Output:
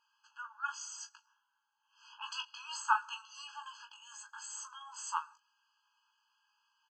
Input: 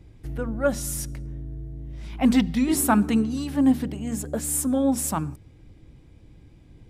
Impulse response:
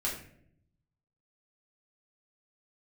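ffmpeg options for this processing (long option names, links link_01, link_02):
-af "aecho=1:1:18|39:0.562|0.237,aresample=16000,aresample=44100,afftfilt=real='re*eq(mod(floor(b*sr/1024/840),2),1)':imag='im*eq(mod(floor(b*sr/1024/840),2),1)':win_size=1024:overlap=0.75,volume=-4.5dB"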